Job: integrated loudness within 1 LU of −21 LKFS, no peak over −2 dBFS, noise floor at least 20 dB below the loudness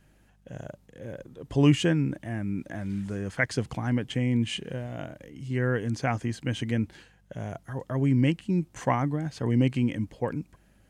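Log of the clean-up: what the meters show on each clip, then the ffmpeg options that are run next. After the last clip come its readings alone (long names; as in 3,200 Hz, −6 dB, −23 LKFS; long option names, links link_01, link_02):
mains hum 50 Hz; hum harmonics up to 200 Hz; level of the hum −49 dBFS; integrated loudness −28.0 LKFS; sample peak −9.5 dBFS; target loudness −21.0 LKFS
→ -af "bandreject=frequency=50:width_type=h:width=4,bandreject=frequency=100:width_type=h:width=4,bandreject=frequency=150:width_type=h:width=4,bandreject=frequency=200:width_type=h:width=4"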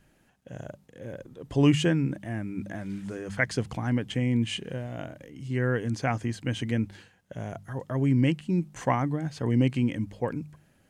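mains hum none found; integrated loudness −28.5 LKFS; sample peak −10.0 dBFS; target loudness −21.0 LKFS
→ -af "volume=7.5dB"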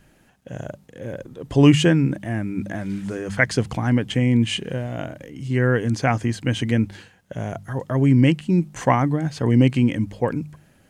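integrated loudness −21.0 LKFS; sample peak −2.5 dBFS; background noise floor −57 dBFS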